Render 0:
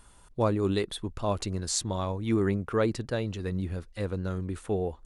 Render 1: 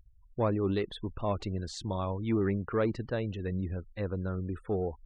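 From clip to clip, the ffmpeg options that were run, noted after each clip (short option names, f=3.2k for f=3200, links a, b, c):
-filter_complex "[0:a]asplit=2[a][b];[b]asoftclip=type=tanh:threshold=-25dB,volume=-4dB[c];[a][c]amix=inputs=2:normalize=0,afftfilt=real='re*gte(hypot(re,im),0.01)':imag='im*gte(hypot(re,im),0.01)':win_size=1024:overlap=0.75,lowpass=3.2k,volume=-5.5dB"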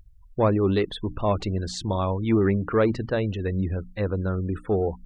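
-af "bandreject=f=60:t=h:w=6,bandreject=f=120:t=h:w=6,bandreject=f=180:t=h:w=6,bandreject=f=240:t=h:w=6,bandreject=f=300:t=h:w=6,volume=8dB"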